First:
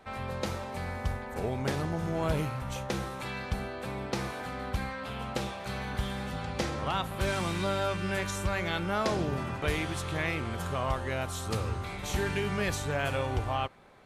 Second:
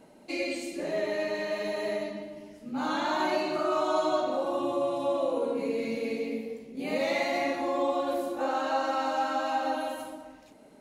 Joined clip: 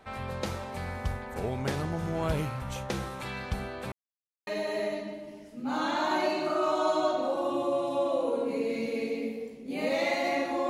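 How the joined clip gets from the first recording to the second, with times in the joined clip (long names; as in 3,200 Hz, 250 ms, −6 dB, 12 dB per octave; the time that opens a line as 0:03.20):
first
0:03.92–0:04.47: silence
0:04.47: continue with second from 0:01.56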